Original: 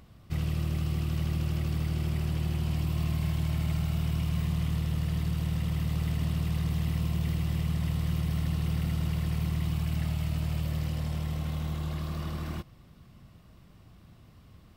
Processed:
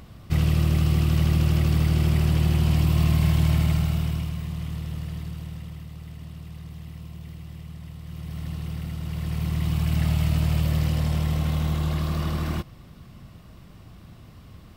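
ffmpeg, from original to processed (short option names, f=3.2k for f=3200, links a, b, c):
-af "volume=27dB,afade=t=out:st=3.51:d=0.86:silence=0.281838,afade=t=out:st=4.96:d=0.93:silence=0.398107,afade=t=in:st=8.04:d=0.45:silence=0.421697,afade=t=in:st=9.02:d=1.12:silence=0.298538"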